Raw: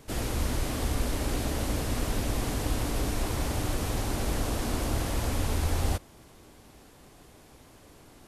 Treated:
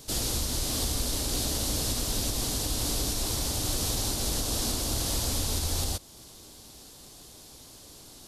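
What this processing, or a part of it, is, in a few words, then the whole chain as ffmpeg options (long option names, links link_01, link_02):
over-bright horn tweeter: -af "highshelf=frequency=3000:width_type=q:width=1.5:gain=10.5,alimiter=limit=-18.5dB:level=0:latency=1:release=270"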